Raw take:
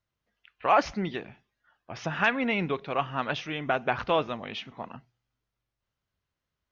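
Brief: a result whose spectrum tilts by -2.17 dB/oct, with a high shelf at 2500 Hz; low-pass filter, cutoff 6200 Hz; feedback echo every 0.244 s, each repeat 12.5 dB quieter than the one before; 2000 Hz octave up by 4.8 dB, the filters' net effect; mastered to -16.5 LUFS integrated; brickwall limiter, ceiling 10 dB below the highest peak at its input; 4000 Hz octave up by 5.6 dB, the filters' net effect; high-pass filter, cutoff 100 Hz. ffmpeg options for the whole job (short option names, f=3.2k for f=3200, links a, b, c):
-af "highpass=100,lowpass=6.2k,equalizer=f=2k:t=o:g=6,highshelf=f=2.5k:g=-4,equalizer=f=4k:t=o:g=9,alimiter=limit=-15.5dB:level=0:latency=1,aecho=1:1:244|488|732:0.237|0.0569|0.0137,volume=13dB"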